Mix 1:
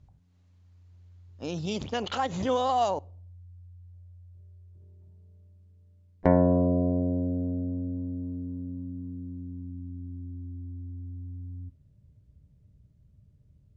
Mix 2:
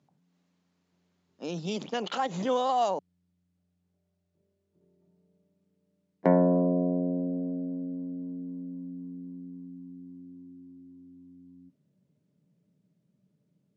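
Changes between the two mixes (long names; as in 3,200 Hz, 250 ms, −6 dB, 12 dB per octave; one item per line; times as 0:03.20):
speech: send off
master: add Chebyshev high-pass filter 170 Hz, order 4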